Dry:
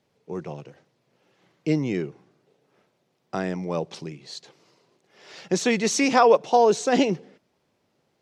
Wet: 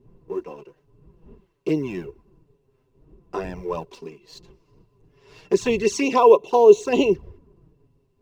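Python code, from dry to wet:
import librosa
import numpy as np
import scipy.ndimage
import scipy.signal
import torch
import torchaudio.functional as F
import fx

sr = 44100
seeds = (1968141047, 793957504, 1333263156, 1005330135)

y = fx.law_mismatch(x, sr, coded='A')
y = fx.dmg_wind(y, sr, seeds[0], corner_hz=81.0, level_db=-41.0)
y = fx.env_flanger(y, sr, rest_ms=8.2, full_db=-17.5)
y = fx.low_shelf(y, sr, hz=69.0, db=-10.5)
y = fx.small_body(y, sr, hz=(400.0, 1000.0, 2700.0), ring_ms=45, db=15)
y = y * 10.0 ** (-1.5 / 20.0)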